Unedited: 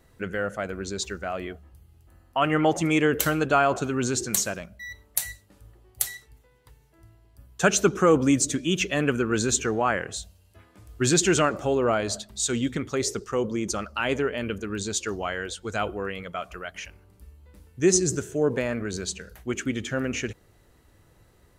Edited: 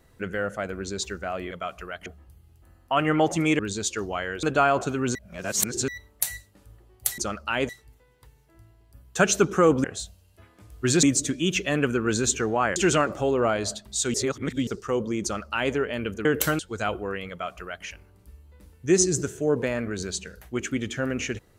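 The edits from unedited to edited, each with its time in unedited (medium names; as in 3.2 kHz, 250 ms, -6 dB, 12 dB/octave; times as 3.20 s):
3.04–3.38 s: swap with 14.69–15.53 s
4.10–4.83 s: reverse
10.01–11.20 s: move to 8.28 s
12.58–13.11 s: reverse
13.67–14.18 s: copy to 6.13 s
16.24–16.79 s: copy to 1.51 s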